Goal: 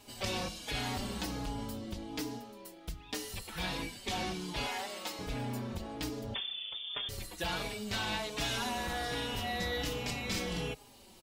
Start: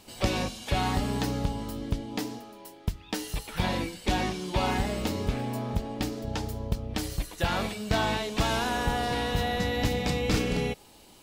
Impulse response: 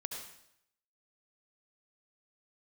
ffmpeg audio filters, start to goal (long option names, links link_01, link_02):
-filter_complex "[0:a]asettb=1/sr,asplit=3[link_01][link_02][link_03];[link_01]atrim=end=4.664[link_04];[link_02]atrim=start=4.66:end=5.19,asetpts=PTS-STARTPTS,afade=type=in:duration=0.004:curve=qsin,afade=type=out:start_time=0.526:duration=0.004:curve=qsin,highpass=640[link_05];[link_03]atrim=start=5.186[link_06];[link_04][link_05]acrossfade=duration=0.004:curve1=hsin:curve2=qsin[link_07];[link_07][link_06]acrossfade=duration=0.004:curve1=qsin:curve2=hsin,acrossover=split=1900[link_08][link_09];[link_08]asoftclip=type=tanh:threshold=-32dB[link_10];[link_10][link_09]amix=inputs=2:normalize=0,asettb=1/sr,asplit=3[link_11][link_12][link_13];[link_11]atrim=end=6.344[link_14];[link_12]atrim=start=6.34:end=7.09,asetpts=PTS-STARTPTS,afade=type=in:duration=0.004:curve=qsin,afade=type=out:start_time=0.746:duration=0.004:curve=qsin,lowpass=frequency=3100:width_type=q:width=0.5098,lowpass=frequency=3100:width_type=q:width=0.6013,lowpass=frequency=3100:width_type=q:width=0.9,lowpass=frequency=3100:width_type=q:width=2.563,afreqshift=-3600[link_15];[link_13]atrim=start=7.086[link_16];[link_14][link_15]acrossfade=duration=0.004:curve1=hsin:curve2=qsin[link_17];[link_17][link_16]acrossfade=duration=0.004:curve1=qsin:curve2=hsin,asplit=2[link_18][link_19];[link_19]adelay=4.4,afreqshift=-1.3[link_20];[link_18][link_20]amix=inputs=2:normalize=1"